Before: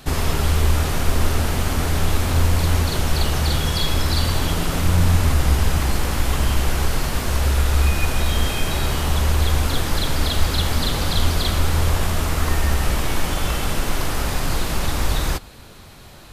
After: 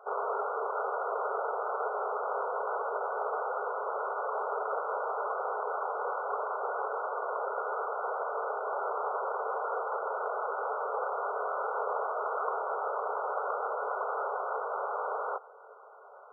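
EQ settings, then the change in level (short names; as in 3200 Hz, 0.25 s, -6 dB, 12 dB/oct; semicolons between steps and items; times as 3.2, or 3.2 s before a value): brick-wall FIR band-pass 400–1500 Hz; -2.0 dB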